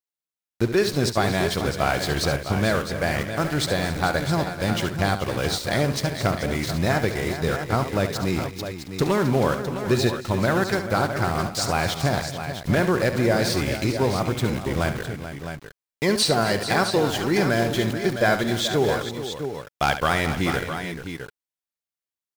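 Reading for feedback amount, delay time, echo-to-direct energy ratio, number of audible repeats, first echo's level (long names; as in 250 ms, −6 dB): repeats not evenly spaced, 70 ms, −5.0 dB, 5, −10.0 dB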